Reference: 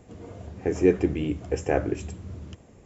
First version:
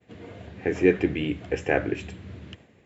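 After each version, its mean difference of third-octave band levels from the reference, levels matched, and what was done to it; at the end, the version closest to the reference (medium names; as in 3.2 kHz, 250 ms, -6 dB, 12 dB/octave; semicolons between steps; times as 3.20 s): 2.5 dB: high-pass 94 Hz; high-order bell 2.6 kHz +9.5 dB; expander -47 dBFS; treble shelf 5.4 kHz -10 dB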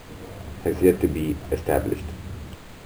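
6.5 dB: CVSD coder 64 kbps; added noise pink -45 dBFS; distance through air 56 m; careless resampling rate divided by 4×, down filtered, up hold; trim +2.5 dB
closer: first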